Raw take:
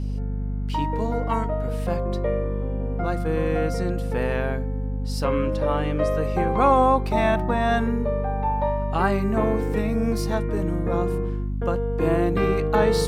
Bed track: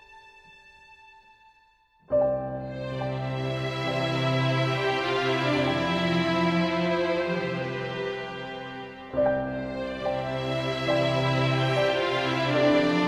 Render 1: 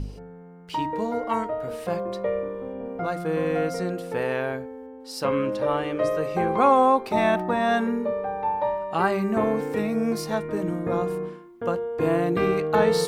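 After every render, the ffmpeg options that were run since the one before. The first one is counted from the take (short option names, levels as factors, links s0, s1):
-af "bandreject=f=50:t=h:w=4,bandreject=f=100:t=h:w=4,bandreject=f=150:t=h:w=4,bandreject=f=200:t=h:w=4,bandreject=f=250:t=h:w=4,bandreject=f=300:t=h:w=4,bandreject=f=350:t=h:w=4"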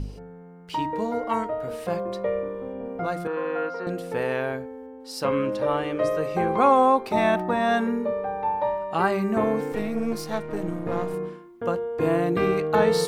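-filter_complex "[0:a]asettb=1/sr,asplit=3[s0][s1][s2];[s0]atrim=end=3.274[s3];[s1]atrim=start=3.27:end=3.87,asetpts=PTS-STARTPTS,afade=t=in:d=0.004:c=qsin,afade=t=out:st=0.596:d=0.004:c=qsin,highpass=420,equalizer=f=670:t=q:w=4:g=-8,equalizer=f=940:t=q:w=4:g=8,equalizer=f=1400:t=q:w=4:g=6,equalizer=f=2100:t=q:w=4:g=-9,equalizer=f=3500:t=q:w=4:g=-7,lowpass=f=3700:w=0.5412,lowpass=f=3700:w=1.3066[s4];[s2]atrim=start=3.866[s5];[s3][s4]acrossfade=d=0.004:c1=hsin:c2=qsin[s6];[s6][s5]acrossfade=d=0.004:c1=qsin:c2=hsin,asettb=1/sr,asplit=3[s7][s8][s9];[s7]atrim=end=9.724[s10];[s8]atrim=start=9.72:end=11.14,asetpts=PTS-STARTPTS,afade=t=in:d=0.004:c=qsin,afade=t=out:st=1.416:d=0.004:c=qsin,aeval=exprs='if(lt(val(0),0),0.447*val(0),val(0))':c=same[s11];[s9]atrim=start=11.136[s12];[s10][s11]acrossfade=d=0.004:c1=hsin:c2=qsin[s13];[s13][s12]acrossfade=d=0.004:c1=qsin:c2=hsin"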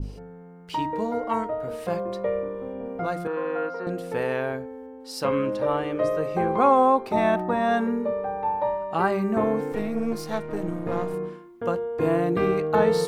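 -af "adynamicequalizer=threshold=0.0126:dfrequency=1700:dqfactor=0.7:tfrequency=1700:tqfactor=0.7:attack=5:release=100:ratio=0.375:range=2.5:mode=cutabove:tftype=highshelf"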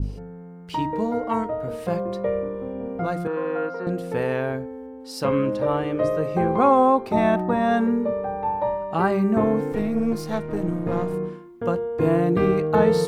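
-af "equalizer=f=92:w=0.33:g=7"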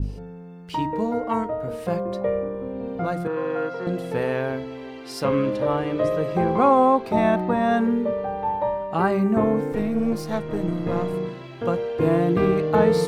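-filter_complex "[1:a]volume=0.141[s0];[0:a][s0]amix=inputs=2:normalize=0"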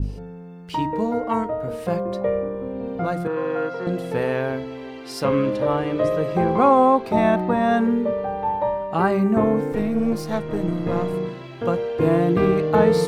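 -af "volume=1.19"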